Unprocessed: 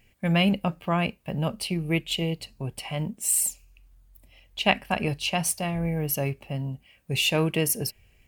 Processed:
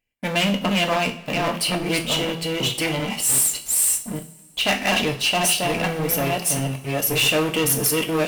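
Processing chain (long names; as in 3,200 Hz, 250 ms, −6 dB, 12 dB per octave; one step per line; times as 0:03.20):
delay that plays each chunk backwards 599 ms, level −2 dB
leveller curve on the samples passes 5
parametric band 71 Hz −11 dB 2.6 octaves
coupled-rooms reverb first 0.36 s, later 2.4 s, from −22 dB, DRR 3.5 dB
level −9 dB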